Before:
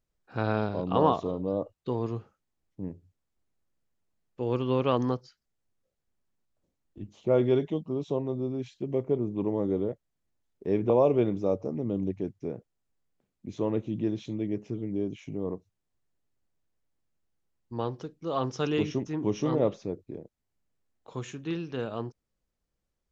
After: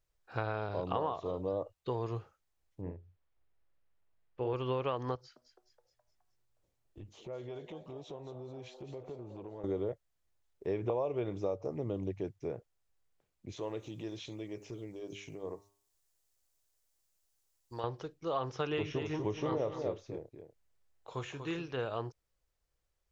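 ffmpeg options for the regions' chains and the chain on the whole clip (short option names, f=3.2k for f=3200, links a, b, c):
-filter_complex "[0:a]asettb=1/sr,asplit=3[a][b][c];[a]atrim=end=2.814[d];[b]atrim=start=2.81:end=4.54,asetpts=PTS-STARTPTS,afade=t=in:d=0.004:c=qsin,afade=t=out:st=1.726:d=0.004:c=qsin,lowpass=3k,asplit=2[e][f];[f]adelay=45,volume=-5.5dB[g];[e][g]amix=inputs=2:normalize=0,atrim=end_sample=76293[h];[c]atrim=start=4.536[i];[d][h]acrossfade=d=0.004:c1=hsin:c2=qsin[j];[j][i]acrossfade=d=0.004:c1=qsin:c2=hsin,asettb=1/sr,asplit=3[k][l][m];[k]atrim=end=5.154[n];[l]atrim=start=5.15:end=9.64,asetpts=PTS-STARTPTS,afade=t=in:d=0.004:c=qsin,afade=t=out:st=4.486:d=0.004:c=qsin,acompressor=threshold=-38dB:ratio=6:attack=3.2:release=140:knee=1:detection=peak,asplit=6[o][p][q][r][s][t];[p]adelay=210,afreqshift=120,volume=-13dB[u];[q]adelay=420,afreqshift=240,volume=-18.7dB[v];[r]adelay=630,afreqshift=360,volume=-24.4dB[w];[s]adelay=840,afreqshift=480,volume=-30dB[x];[t]adelay=1050,afreqshift=600,volume=-35.7dB[y];[o][u][v][w][x][y]amix=inputs=6:normalize=0,atrim=end_sample=198009[z];[m]atrim=start=9.636[aa];[n][z]acrossfade=d=0.004:c1=hsin:c2=qsin[ab];[ab][aa]acrossfade=d=0.004:c1=qsin:c2=hsin,asettb=1/sr,asplit=3[ac][ad][ae];[ac]atrim=end=13.524[af];[ad]atrim=start=13.52:end=17.84,asetpts=PTS-STARTPTS,afade=t=in:d=0.004:c=qsin,afade=t=out:st=4.316:d=0.004:c=qsin,bass=f=250:g=-5,treble=f=4k:g=13,acompressor=threshold=-36dB:ratio=2:attack=3.2:release=140:knee=1:detection=peak,bandreject=f=100.2:t=h:w=4,bandreject=f=200.4:t=h:w=4,bandreject=f=300.6:t=h:w=4,bandreject=f=400.8:t=h:w=4,bandreject=f=501:t=h:w=4,bandreject=f=601.2:t=h:w=4,bandreject=f=701.4:t=h:w=4,bandreject=f=801.6:t=h:w=4,bandreject=f=901.8:t=h:w=4,bandreject=f=1.002k:t=h:w=4,bandreject=f=1.1022k:t=h:w=4,bandreject=f=1.2024k:t=h:w=4,bandreject=f=1.3026k:t=h:w=4,bandreject=f=1.4028k:t=h:w=4,bandreject=f=1.503k:t=h:w=4,bandreject=f=1.6032k:t=h:w=4,bandreject=f=1.7034k:t=h:w=4,bandreject=f=1.8036k:t=h:w=4,bandreject=f=1.9038k:t=h:w=4,bandreject=f=2.004k:t=h:w=4,bandreject=f=2.1042k:t=h:w=4,bandreject=f=2.2044k:t=h:w=4,bandreject=f=2.3046k:t=h:w=4,bandreject=f=2.4048k:t=h:w=4,bandreject=f=2.505k:t=h:w=4[ag];[ae]atrim=start=17.836[ah];[af][ag]acrossfade=d=0.004:c1=hsin:c2=qsin[ai];[ai][ah]acrossfade=d=0.004:c1=qsin:c2=hsin,asettb=1/sr,asplit=3[aj][ak][al];[aj]atrim=end=18.704[am];[ak]atrim=start=18.7:end=21.68,asetpts=PTS-STARTPTS,afade=t=in:d=0.004:c=qsin,afade=t=out:st=2.976:d=0.004:c=qsin,asplit=2[an][ao];[ao]adelay=28,volume=-13dB[ap];[an][ap]amix=inputs=2:normalize=0,atrim=end_sample=131418,aecho=1:1:242:0.398,atrim=end_sample=131418[aq];[al]atrim=start=21.676[ar];[am][aq]acrossfade=d=0.004:c1=hsin:c2=qsin[as];[as][ar]acrossfade=d=0.004:c1=qsin:c2=hsin,acrossover=split=3600[at][au];[au]acompressor=threshold=-59dB:ratio=4:attack=1:release=60[av];[at][av]amix=inputs=2:normalize=0,equalizer=f=220:t=o:w=1.1:g=-13.5,acompressor=threshold=-31dB:ratio=12,volume=1.5dB"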